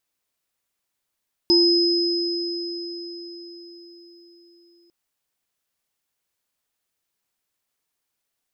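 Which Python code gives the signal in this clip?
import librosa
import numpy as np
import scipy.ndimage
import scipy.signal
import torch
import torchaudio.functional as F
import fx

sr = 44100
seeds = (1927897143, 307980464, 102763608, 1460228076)

y = fx.additive_free(sr, length_s=3.4, hz=344.0, level_db=-15, upper_db=(-19, 0), decay_s=4.99, upper_decays_s=(0.49, 4.38), upper_hz=(904.0, 5070.0))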